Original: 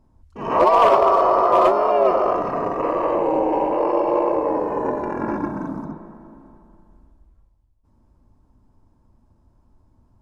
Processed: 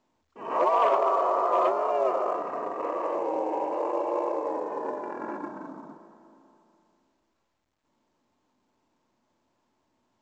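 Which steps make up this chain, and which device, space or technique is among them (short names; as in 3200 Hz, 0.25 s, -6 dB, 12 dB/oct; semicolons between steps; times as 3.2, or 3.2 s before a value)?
telephone (BPF 340–3200 Hz; gain -8 dB; µ-law 128 kbps 16000 Hz)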